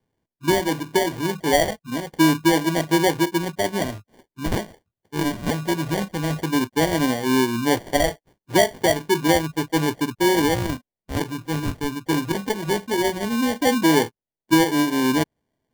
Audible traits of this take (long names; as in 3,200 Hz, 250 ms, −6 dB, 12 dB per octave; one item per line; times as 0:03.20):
phaser sweep stages 4, 0.15 Hz, lowest notch 630–2,500 Hz
aliases and images of a low sample rate 1,300 Hz, jitter 0%